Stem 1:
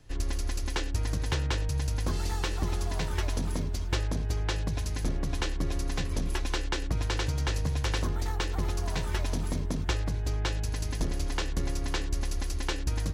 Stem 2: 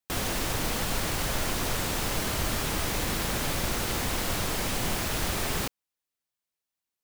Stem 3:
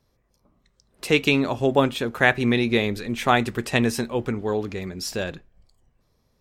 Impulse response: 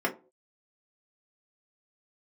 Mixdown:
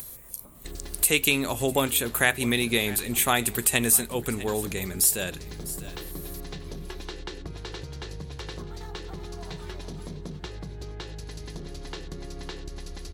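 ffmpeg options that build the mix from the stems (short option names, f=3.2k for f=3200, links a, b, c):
-filter_complex "[0:a]equalizer=f=160:t=o:w=0.67:g=8,equalizer=f=400:t=o:w=0.67:g=6,equalizer=f=4k:t=o:w=0.67:g=8,acompressor=threshold=-27dB:ratio=6,adelay=550,volume=-6.5dB,asplit=3[a][b][c];[b]volume=-17dB[d];[c]volume=-16.5dB[e];[2:a]acompressor=mode=upward:threshold=-41dB:ratio=2.5,aexciter=amount=10.2:drive=9.3:freq=7.9k,equalizer=f=4k:t=o:w=2.2:g=8.5,volume=0.5dB,asplit=2[f][g];[g]volume=-21dB[h];[3:a]atrim=start_sample=2205[i];[d][i]afir=irnorm=-1:irlink=0[j];[e][h]amix=inputs=2:normalize=0,aecho=0:1:650:1[k];[a][f][j][k]amix=inputs=4:normalize=0,acompressor=threshold=-32dB:ratio=1.5"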